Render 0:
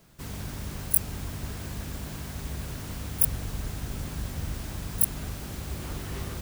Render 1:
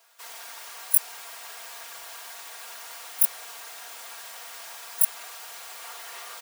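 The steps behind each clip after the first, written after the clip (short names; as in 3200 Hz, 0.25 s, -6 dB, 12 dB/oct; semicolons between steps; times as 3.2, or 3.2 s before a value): HPF 690 Hz 24 dB/oct; comb 4.3 ms; gain +1 dB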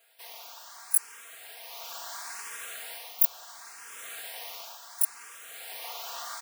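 in parallel at -5 dB: crossover distortion -33 dBFS; on the sum: AGC gain up to 4.5 dB; endless phaser +0.72 Hz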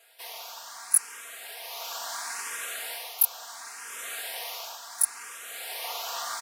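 downsampling 32000 Hz; gain +5.5 dB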